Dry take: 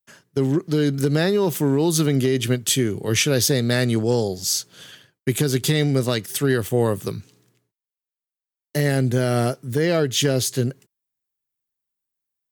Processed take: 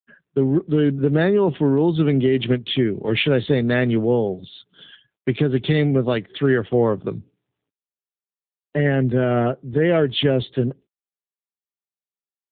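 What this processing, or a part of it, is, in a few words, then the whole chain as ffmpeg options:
mobile call with aggressive noise cancelling: -af "highpass=130,afftdn=nr=22:nf=-44,volume=3dB" -ar 8000 -c:a libopencore_amrnb -b:a 7950

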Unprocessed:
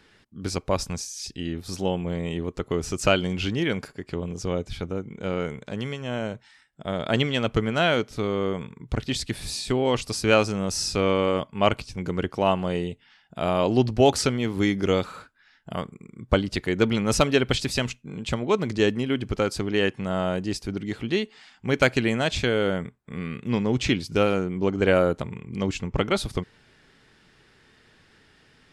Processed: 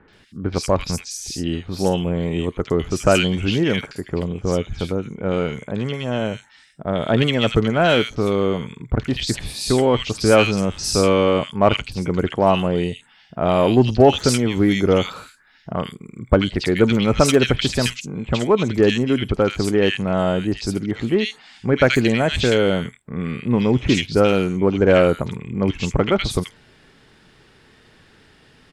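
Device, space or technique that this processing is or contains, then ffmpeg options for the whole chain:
parallel distortion: -filter_complex "[0:a]acrossover=split=1800|5900[a][b][c];[b]adelay=80[d];[c]adelay=130[e];[a][d][e]amix=inputs=3:normalize=0,asplit=2[f][g];[g]asoftclip=type=hard:threshold=-18.5dB,volume=-10dB[h];[f][h]amix=inputs=2:normalize=0,volume=4.5dB"

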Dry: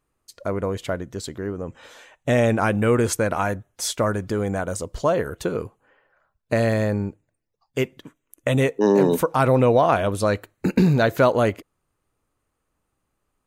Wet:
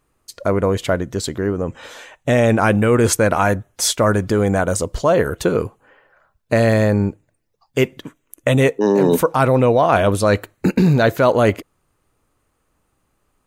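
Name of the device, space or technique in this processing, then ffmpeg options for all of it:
compression on the reversed sound: -af "areverse,acompressor=threshold=-19dB:ratio=6,areverse,volume=8.5dB"

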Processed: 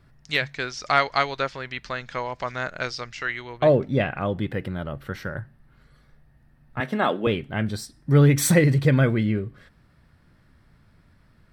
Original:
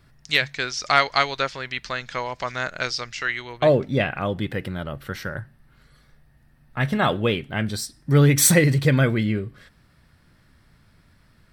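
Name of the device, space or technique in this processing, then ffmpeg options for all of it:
behind a face mask: -filter_complex "[0:a]highshelf=f=2.4k:g=-8,asettb=1/sr,asplit=3[a][b][c];[a]atrim=end=6.804[d];[b]atrim=start=6.8:end=7.27,asetpts=PTS-STARTPTS,afade=t=in:d=0.004:c=qsin,afade=t=out:st=0.466:d=0.004:c=qsin,highpass=f=210:w=0.5412,highpass=f=210:w=1.3066[e];[c]atrim=start=7.266[f];[d][e]acrossfade=d=0.004:c1=hsin:c2=qsin[g];[g][f]acrossfade=d=0.004:c1=qsin:c2=hsin"

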